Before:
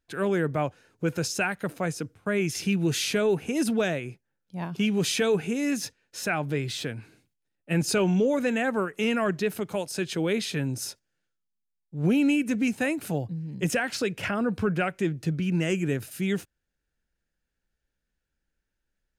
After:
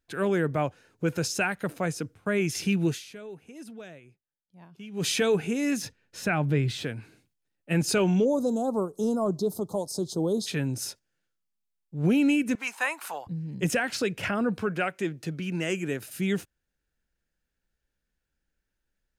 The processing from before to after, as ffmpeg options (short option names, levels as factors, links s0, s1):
-filter_complex "[0:a]asettb=1/sr,asplit=3[s0][s1][s2];[s0]atrim=end=5.824[s3];[s1]atrim=start=5.82:end=6.84,asetpts=PTS-STARTPTS,afade=t=in:d=0.004:c=qsin,afade=t=out:st=1.016:d=0.004:c=qsin,bass=f=250:g=7,treble=f=4000:g=-5[s4];[s2]atrim=start=6.836[s5];[s3][s4]acrossfade=d=0.004:c1=hsin:c2=qsin[s6];[s6][s5]acrossfade=d=0.004:c1=qsin:c2=hsin,asplit=3[s7][s8][s9];[s7]afade=t=out:st=8.24:d=0.02[s10];[s8]asuperstop=centerf=2100:order=8:qfactor=0.71,afade=t=in:st=8.24:d=0.02,afade=t=out:st=10.46:d=0.02[s11];[s9]afade=t=in:st=10.46:d=0.02[s12];[s10][s11][s12]amix=inputs=3:normalize=0,asettb=1/sr,asplit=3[s13][s14][s15];[s13]atrim=end=12.554[s16];[s14]atrim=start=12.55:end=13.27,asetpts=PTS-STARTPTS,afade=t=in:d=0.004:c=qsin,afade=t=out:st=0.716:d=0.004:c=qsin,highpass=f=1000:t=q:w=4.7[s17];[s15]atrim=start=13.266[s18];[s16][s17]acrossfade=d=0.004:c1=hsin:c2=qsin[s19];[s19][s18]acrossfade=d=0.004:c1=qsin:c2=hsin,asettb=1/sr,asplit=3[s20][s21][s22];[s20]atrim=end=14.584[s23];[s21]atrim=start=14.58:end=16.09,asetpts=PTS-STARTPTS,afade=t=in:d=0.004:c=qsin,afade=t=out:st=1.506:d=0.004:c=qsin,highpass=f=310:p=1[s24];[s22]atrim=start=16.086[s25];[s23][s24]acrossfade=d=0.004:c1=hsin:c2=qsin[s26];[s26][s25]acrossfade=d=0.004:c1=qsin:c2=hsin,asplit=3[s27][s28][s29];[s27]atrim=end=3.05,asetpts=PTS-STARTPTS,afade=t=out:st=2.88:d=0.17:c=qua:silence=0.125893[s30];[s28]atrim=start=3.05:end=4.88,asetpts=PTS-STARTPTS,volume=0.126[s31];[s29]atrim=start=4.88,asetpts=PTS-STARTPTS,afade=t=in:d=0.17:c=qua:silence=0.125893[s32];[s30][s31][s32]concat=n=3:v=0:a=1"